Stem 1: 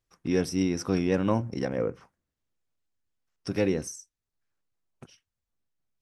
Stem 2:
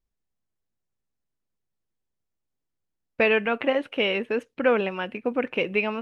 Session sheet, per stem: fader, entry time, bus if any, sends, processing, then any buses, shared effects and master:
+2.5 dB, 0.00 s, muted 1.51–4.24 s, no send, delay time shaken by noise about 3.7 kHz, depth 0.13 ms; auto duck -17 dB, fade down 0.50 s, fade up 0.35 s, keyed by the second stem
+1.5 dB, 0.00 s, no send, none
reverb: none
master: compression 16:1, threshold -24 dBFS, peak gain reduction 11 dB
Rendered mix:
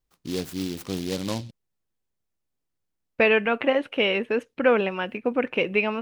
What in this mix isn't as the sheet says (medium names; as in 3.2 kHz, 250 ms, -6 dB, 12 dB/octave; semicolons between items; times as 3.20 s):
stem 1 +2.5 dB -> -4.0 dB; master: missing compression 16:1, threshold -24 dBFS, peak gain reduction 11 dB